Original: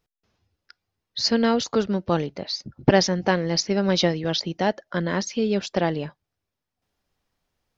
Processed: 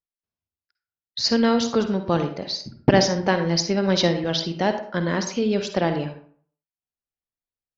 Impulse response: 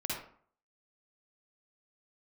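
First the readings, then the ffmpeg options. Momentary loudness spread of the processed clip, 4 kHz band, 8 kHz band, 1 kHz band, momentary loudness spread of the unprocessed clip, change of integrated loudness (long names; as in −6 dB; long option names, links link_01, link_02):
8 LU, +1.0 dB, can't be measured, +1.0 dB, 9 LU, +1.0 dB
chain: -filter_complex "[0:a]agate=range=-25dB:threshold=-39dB:ratio=16:detection=peak,asplit=2[link_01][link_02];[1:a]atrim=start_sample=2205[link_03];[link_02][link_03]afir=irnorm=-1:irlink=0,volume=-7.5dB[link_04];[link_01][link_04]amix=inputs=2:normalize=0,volume=-2dB"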